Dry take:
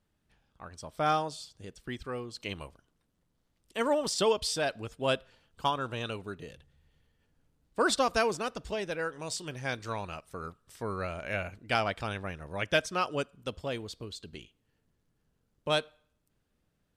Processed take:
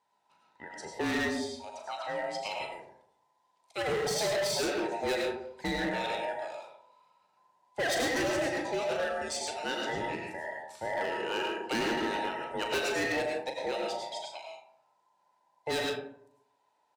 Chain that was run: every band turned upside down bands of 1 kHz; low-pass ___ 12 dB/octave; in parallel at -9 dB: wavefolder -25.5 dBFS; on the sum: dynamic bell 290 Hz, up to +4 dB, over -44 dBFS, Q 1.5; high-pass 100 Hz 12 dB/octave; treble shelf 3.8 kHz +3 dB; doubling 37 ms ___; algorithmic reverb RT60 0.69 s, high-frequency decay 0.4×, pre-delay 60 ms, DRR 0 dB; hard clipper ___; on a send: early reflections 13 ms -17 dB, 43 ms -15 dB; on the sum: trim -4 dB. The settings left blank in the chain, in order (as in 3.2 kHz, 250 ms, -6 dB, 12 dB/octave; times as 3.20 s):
8.3 kHz, -9.5 dB, -23 dBFS